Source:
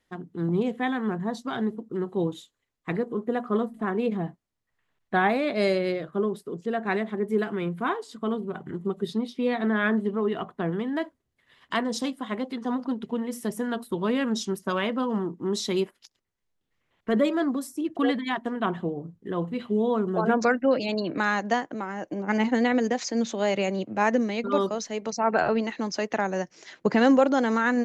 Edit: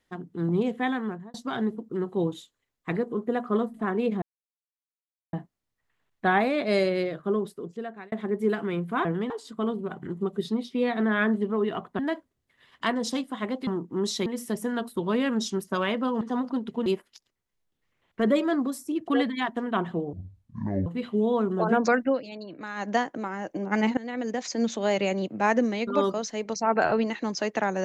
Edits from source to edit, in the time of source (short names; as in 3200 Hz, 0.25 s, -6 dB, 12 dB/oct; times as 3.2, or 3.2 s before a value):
0.93–1.34 fade out
4.22 insert silence 1.11 s
6.36–7.01 fade out linear
10.63–10.88 move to 7.94
12.56–13.21 swap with 15.16–15.75
19.02–19.43 speed 56%
20.64–21.45 dip -12 dB, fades 0.13 s
22.54–23.2 fade in, from -20.5 dB